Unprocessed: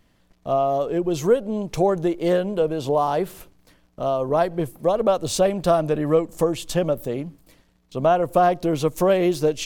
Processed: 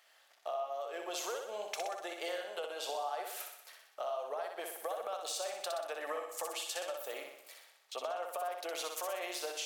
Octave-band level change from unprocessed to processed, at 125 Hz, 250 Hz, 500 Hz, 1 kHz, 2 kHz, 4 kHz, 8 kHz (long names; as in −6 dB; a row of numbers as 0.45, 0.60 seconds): below −40 dB, −31.5 dB, −19.5 dB, −15.5 dB, −8.5 dB, −6.5 dB, −7.0 dB